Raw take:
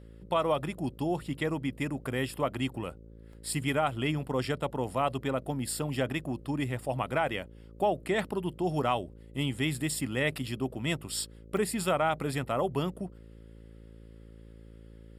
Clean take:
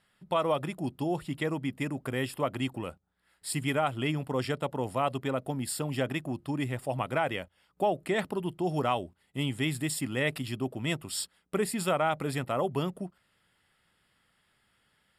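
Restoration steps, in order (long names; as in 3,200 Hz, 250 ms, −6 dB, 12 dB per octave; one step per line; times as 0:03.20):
hum removal 55.5 Hz, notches 10
repair the gap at 0:03.33/0:11.57, 2.6 ms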